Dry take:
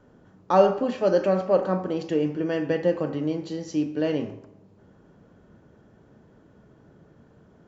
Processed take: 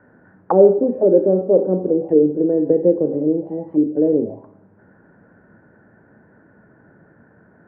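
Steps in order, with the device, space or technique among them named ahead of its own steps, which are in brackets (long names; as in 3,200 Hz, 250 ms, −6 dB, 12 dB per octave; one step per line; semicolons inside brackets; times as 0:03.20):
envelope filter bass rig (envelope-controlled low-pass 420–1,700 Hz down, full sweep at −22.5 dBFS; loudspeaker in its box 70–2,100 Hz, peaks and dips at 72 Hz −8 dB, 140 Hz −4 dB, 420 Hz −3 dB, 1,200 Hz −9 dB)
level +4 dB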